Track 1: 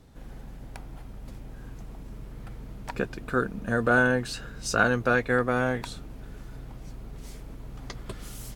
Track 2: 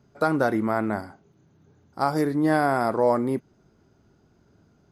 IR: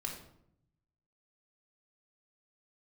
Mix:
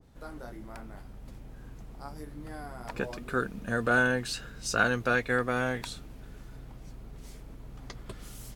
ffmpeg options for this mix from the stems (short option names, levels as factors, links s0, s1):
-filter_complex "[0:a]adynamicequalizer=threshold=0.0112:dfrequency=1700:dqfactor=0.7:tfrequency=1700:tqfactor=0.7:attack=5:release=100:ratio=0.375:range=3:mode=boostabove:tftype=highshelf,volume=0.596[s0];[1:a]highshelf=f=3900:g=10.5,flanger=delay=20:depth=4.5:speed=0.88,volume=0.1[s1];[s0][s1]amix=inputs=2:normalize=0"